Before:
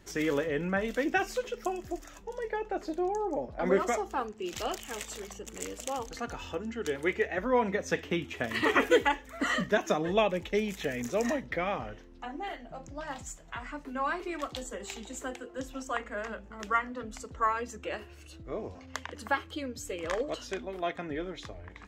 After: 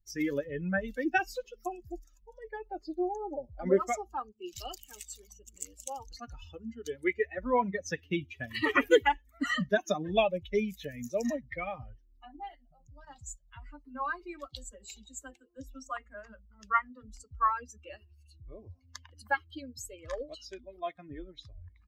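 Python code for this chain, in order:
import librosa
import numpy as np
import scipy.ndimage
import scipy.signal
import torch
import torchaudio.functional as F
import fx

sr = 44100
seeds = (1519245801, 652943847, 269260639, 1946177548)

y = fx.bin_expand(x, sr, power=2.0)
y = fx.level_steps(y, sr, step_db=11, at=(12.55, 13.07))
y = F.gain(torch.from_numpy(y), 3.5).numpy()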